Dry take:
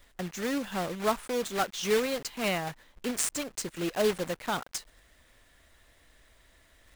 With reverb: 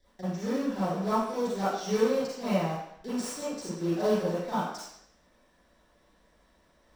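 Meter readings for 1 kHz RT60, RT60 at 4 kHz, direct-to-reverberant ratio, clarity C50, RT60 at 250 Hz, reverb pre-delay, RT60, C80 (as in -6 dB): 0.75 s, 0.70 s, -13.5 dB, -4.0 dB, 0.55 s, 35 ms, 0.70 s, 3.0 dB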